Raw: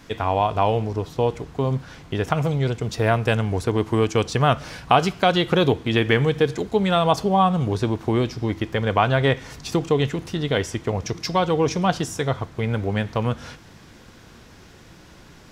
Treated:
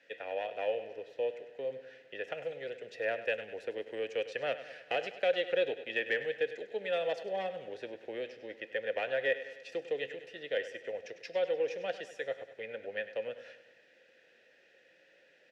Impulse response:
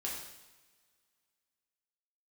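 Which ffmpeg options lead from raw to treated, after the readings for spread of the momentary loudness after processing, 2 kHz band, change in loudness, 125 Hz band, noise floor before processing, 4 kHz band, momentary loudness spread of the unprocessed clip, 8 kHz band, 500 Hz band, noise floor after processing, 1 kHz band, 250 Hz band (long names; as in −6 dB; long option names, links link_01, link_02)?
11 LU, −9.0 dB, −14.0 dB, −38.0 dB, −47 dBFS, −15.0 dB, 8 LU, below −20 dB, −11.0 dB, −65 dBFS, −21.5 dB, −27.0 dB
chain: -filter_complex "[0:a]lowshelf=frequency=130:gain=-11.5,acrossover=split=320|800[link_01][link_02][link_03];[link_03]acontrast=76[link_04];[link_01][link_02][link_04]amix=inputs=3:normalize=0,aeval=exprs='0.944*(cos(1*acos(clip(val(0)/0.944,-1,1)))-cos(1*PI/2))+0.0299*(cos(7*acos(clip(val(0)/0.944,-1,1)))-cos(7*PI/2))':channel_layout=same,aeval=exprs='clip(val(0),-1,0.316)':channel_layout=same,asplit=3[link_05][link_06][link_07];[link_05]bandpass=frequency=530:width_type=q:width=8,volume=0dB[link_08];[link_06]bandpass=frequency=1840:width_type=q:width=8,volume=-6dB[link_09];[link_07]bandpass=frequency=2480:width_type=q:width=8,volume=-9dB[link_10];[link_08][link_09][link_10]amix=inputs=3:normalize=0,aecho=1:1:100|200|300|400|500|600:0.211|0.118|0.0663|0.0371|0.0208|0.0116,volume=-4dB"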